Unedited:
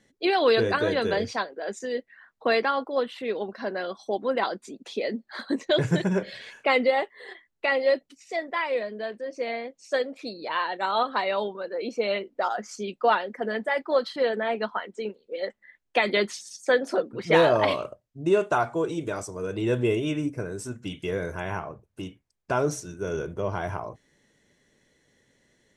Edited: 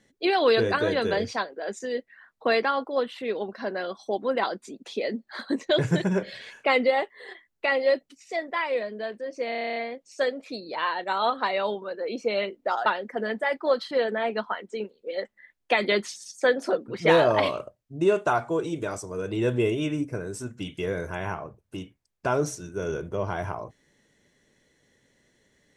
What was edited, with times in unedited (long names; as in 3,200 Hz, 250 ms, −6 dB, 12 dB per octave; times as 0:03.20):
0:09.49: stutter 0.03 s, 10 plays
0:12.59–0:13.11: remove